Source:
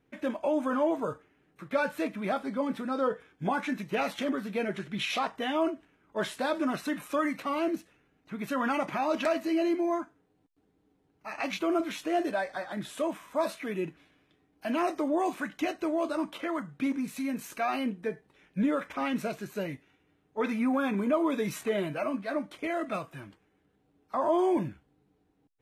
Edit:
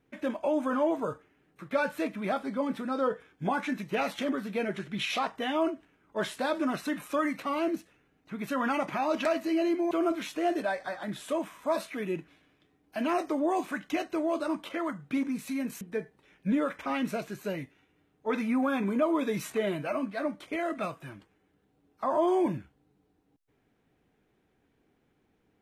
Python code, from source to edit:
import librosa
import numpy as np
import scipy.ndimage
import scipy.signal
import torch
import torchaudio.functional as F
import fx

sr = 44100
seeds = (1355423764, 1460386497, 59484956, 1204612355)

y = fx.edit(x, sr, fx.cut(start_s=9.91, length_s=1.69),
    fx.cut(start_s=17.5, length_s=0.42), tone=tone)